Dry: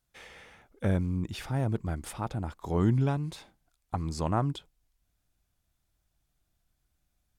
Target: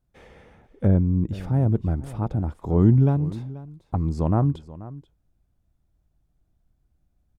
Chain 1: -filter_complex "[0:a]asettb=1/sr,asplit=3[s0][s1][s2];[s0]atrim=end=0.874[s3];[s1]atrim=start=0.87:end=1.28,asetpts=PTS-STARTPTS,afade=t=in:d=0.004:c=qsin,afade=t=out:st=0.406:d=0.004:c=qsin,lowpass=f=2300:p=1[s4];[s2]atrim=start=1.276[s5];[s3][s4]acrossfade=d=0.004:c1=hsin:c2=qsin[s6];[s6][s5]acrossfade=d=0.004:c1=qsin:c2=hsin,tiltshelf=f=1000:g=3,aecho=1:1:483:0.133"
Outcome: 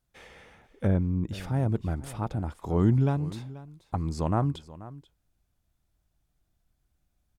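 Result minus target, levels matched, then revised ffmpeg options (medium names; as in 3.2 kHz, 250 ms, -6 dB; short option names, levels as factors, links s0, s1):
1 kHz band +5.0 dB
-filter_complex "[0:a]asettb=1/sr,asplit=3[s0][s1][s2];[s0]atrim=end=0.874[s3];[s1]atrim=start=0.87:end=1.28,asetpts=PTS-STARTPTS,afade=t=in:d=0.004:c=qsin,afade=t=out:st=0.406:d=0.004:c=qsin,lowpass=f=2300:p=1[s4];[s2]atrim=start=1.276[s5];[s3][s4]acrossfade=d=0.004:c1=hsin:c2=qsin[s6];[s6][s5]acrossfade=d=0.004:c1=qsin:c2=hsin,tiltshelf=f=1000:g=9.5,aecho=1:1:483:0.133"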